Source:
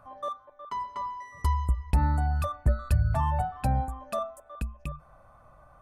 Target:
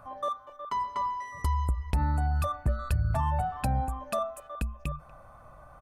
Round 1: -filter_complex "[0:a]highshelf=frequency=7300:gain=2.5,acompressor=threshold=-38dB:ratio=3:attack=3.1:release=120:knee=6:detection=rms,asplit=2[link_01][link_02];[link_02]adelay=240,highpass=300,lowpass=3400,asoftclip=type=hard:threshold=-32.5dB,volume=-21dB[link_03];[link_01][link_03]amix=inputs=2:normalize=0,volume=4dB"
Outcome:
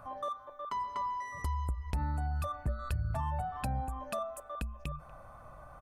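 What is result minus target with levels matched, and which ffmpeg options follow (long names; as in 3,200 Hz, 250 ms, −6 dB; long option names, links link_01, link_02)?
downward compressor: peak gain reduction +6.5 dB
-filter_complex "[0:a]highshelf=frequency=7300:gain=2.5,acompressor=threshold=-28dB:ratio=3:attack=3.1:release=120:knee=6:detection=rms,asplit=2[link_01][link_02];[link_02]adelay=240,highpass=300,lowpass=3400,asoftclip=type=hard:threshold=-32.5dB,volume=-21dB[link_03];[link_01][link_03]amix=inputs=2:normalize=0,volume=4dB"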